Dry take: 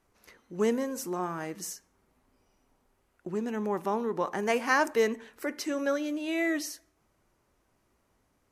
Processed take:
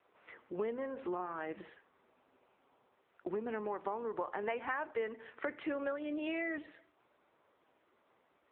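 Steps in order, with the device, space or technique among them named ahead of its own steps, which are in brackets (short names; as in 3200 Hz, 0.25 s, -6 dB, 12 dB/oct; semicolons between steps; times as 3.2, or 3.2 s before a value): voicemail (BPF 370–2900 Hz; compressor 6:1, threshold -40 dBFS, peak gain reduction 18.5 dB; gain +6 dB; AMR-NB 6.7 kbps 8000 Hz)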